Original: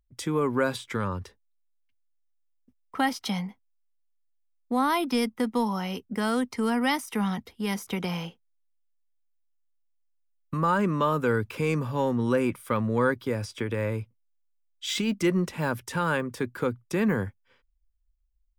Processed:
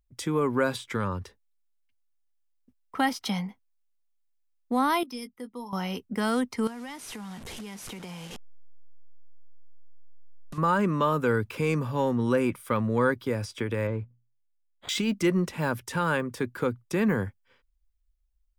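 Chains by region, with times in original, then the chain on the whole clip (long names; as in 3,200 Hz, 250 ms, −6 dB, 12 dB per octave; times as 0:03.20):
0:05.03–0:05.73: spectral envelope exaggerated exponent 1.5 + first-order pre-emphasis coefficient 0.8 + double-tracking delay 16 ms −10.5 dB
0:06.67–0:10.58: linear delta modulator 64 kbit/s, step −33.5 dBFS + notch filter 1,300 Hz, Q 25 + downward compressor, threshold −37 dBFS
0:13.87–0:14.89: running median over 15 samples + moving average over 8 samples + mains-hum notches 60/120/180/240/300 Hz
whole clip: no processing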